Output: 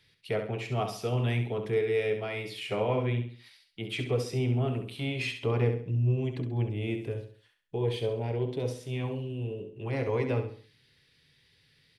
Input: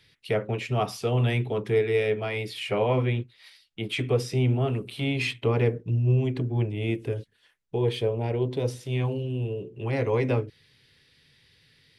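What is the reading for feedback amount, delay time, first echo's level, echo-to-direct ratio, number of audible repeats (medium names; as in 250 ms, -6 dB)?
37%, 67 ms, -8.0 dB, -7.5 dB, 4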